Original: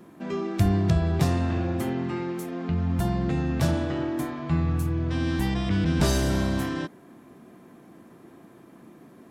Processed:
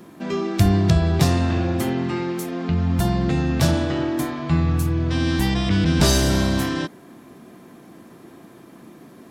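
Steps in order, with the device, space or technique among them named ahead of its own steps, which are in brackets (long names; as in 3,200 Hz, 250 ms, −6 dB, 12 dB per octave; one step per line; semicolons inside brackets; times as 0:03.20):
presence and air boost (parametric band 4,600 Hz +5 dB 1.5 octaves; high-shelf EQ 11,000 Hz +5 dB)
level +5 dB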